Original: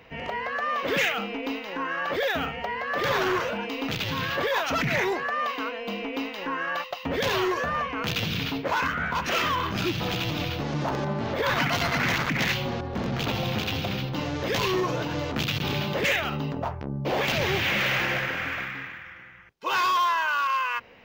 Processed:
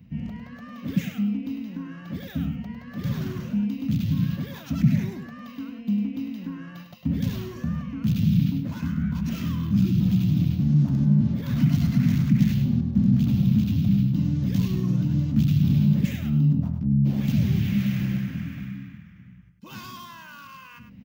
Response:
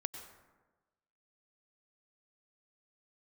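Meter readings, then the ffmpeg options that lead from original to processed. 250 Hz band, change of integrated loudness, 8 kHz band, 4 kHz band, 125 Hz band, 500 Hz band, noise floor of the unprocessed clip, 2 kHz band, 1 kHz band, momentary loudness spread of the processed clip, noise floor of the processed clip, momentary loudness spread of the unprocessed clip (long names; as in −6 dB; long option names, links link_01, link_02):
+9.5 dB, +3.0 dB, can't be measured, −14.0 dB, +11.0 dB, −16.0 dB, −42 dBFS, −17.5 dB, −20.0 dB, 16 LU, −46 dBFS, 7 LU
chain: -af "areverse,acompressor=mode=upward:threshold=-42dB:ratio=2.5,areverse,highpass=54,lowshelf=frequency=300:width_type=q:width=3:gain=12,crystalizer=i=5:c=0,firequalizer=gain_entry='entry(140,0);entry(820,-17);entry(1900,-19)':delay=0.05:min_phase=1,aecho=1:1:102:0.376,volume=-4.5dB"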